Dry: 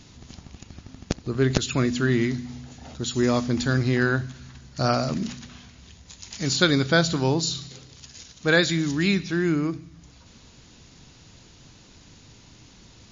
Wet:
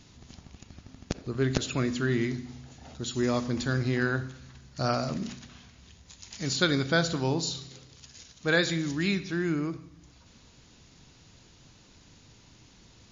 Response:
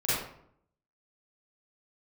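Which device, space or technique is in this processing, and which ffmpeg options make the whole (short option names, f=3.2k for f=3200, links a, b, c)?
filtered reverb send: -filter_complex "[0:a]asplit=2[a][b];[b]highpass=f=230:w=0.5412,highpass=f=230:w=1.3066,lowpass=3.8k[c];[1:a]atrim=start_sample=2205[d];[c][d]afir=irnorm=-1:irlink=0,volume=-23dB[e];[a][e]amix=inputs=2:normalize=0,volume=-5.5dB"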